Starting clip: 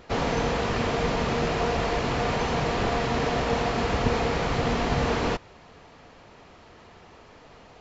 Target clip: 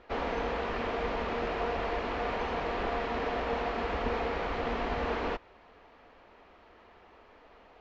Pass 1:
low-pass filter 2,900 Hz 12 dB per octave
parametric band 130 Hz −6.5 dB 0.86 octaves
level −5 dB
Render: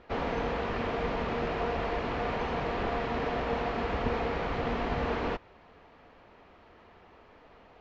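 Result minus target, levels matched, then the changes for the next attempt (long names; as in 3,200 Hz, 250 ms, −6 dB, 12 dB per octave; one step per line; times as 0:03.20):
125 Hz band +4.0 dB
change: parametric band 130 Hz −18.5 dB 0.86 octaves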